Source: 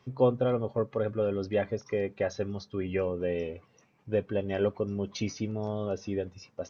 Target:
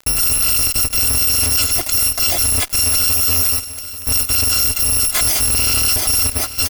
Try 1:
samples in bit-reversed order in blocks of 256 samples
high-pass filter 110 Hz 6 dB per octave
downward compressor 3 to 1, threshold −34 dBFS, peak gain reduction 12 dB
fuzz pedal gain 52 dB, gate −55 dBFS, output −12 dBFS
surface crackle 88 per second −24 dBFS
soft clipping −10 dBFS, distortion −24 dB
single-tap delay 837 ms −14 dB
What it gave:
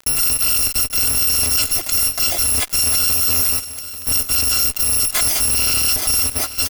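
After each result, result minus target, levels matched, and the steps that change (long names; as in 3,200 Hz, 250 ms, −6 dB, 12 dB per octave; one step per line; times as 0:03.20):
downward compressor: peak gain reduction +12 dB; soft clipping: distortion +12 dB; 125 Hz band −4.0 dB
remove: downward compressor 3 to 1, threshold −34 dBFS, peak gain reduction 12 dB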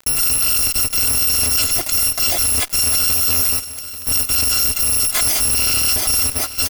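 soft clipping: distortion +12 dB; 125 Hz band −3.5 dB
change: soft clipping −3 dBFS, distortion −36 dB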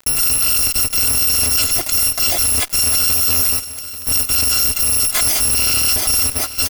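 125 Hz band −4.0 dB
remove: high-pass filter 110 Hz 6 dB per octave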